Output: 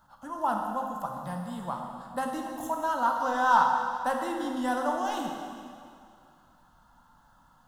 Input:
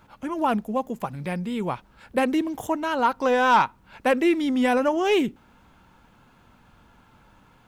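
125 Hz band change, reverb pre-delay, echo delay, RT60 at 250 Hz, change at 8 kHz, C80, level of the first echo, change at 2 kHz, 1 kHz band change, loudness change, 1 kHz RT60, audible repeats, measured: -7.5 dB, 6 ms, no echo, 2.2 s, -2.5 dB, 4.0 dB, no echo, -6.0 dB, -1.5 dB, -5.5 dB, 2.3 s, no echo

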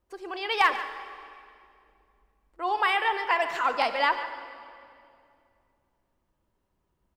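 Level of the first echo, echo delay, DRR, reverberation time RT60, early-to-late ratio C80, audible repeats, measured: -13.5 dB, 143 ms, 8.5 dB, 2.5 s, 9.5 dB, 1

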